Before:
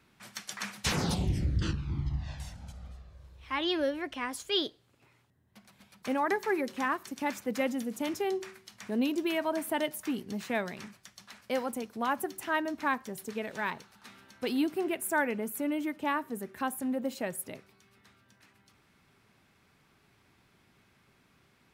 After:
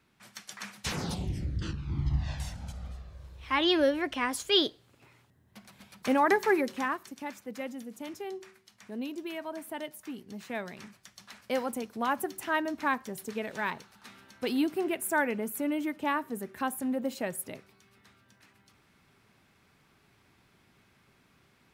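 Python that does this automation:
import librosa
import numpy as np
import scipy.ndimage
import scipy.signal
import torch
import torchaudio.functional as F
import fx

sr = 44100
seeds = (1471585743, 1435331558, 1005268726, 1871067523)

y = fx.gain(x, sr, db=fx.line((1.7, -4.0), (2.15, 5.0), (6.49, 5.0), (7.33, -7.5), (10.18, -7.5), (11.28, 1.0)))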